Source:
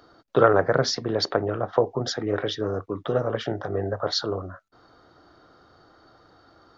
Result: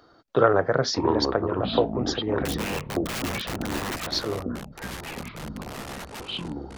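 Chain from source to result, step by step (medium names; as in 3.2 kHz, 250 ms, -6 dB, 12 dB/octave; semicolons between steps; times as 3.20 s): 2.45–4.07 s: integer overflow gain 25 dB; ever faster or slower copies 452 ms, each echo -6 st, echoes 3, each echo -6 dB; trim -1.5 dB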